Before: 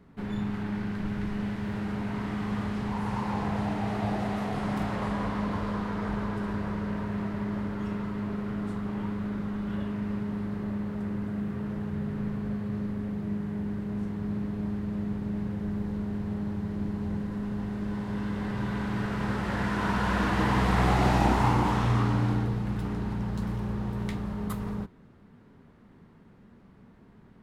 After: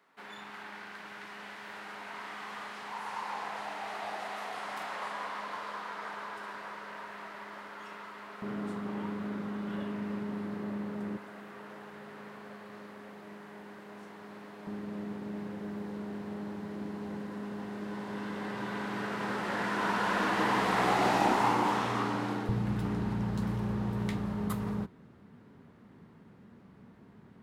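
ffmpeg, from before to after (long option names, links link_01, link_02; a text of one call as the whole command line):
ffmpeg -i in.wav -af "asetnsamples=nb_out_samples=441:pad=0,asendcmd='8.42 highpass f 240;11.17 highpass f 620;14.67 highpass f 300;22.49 highpass f 87',highpass=850" out.wav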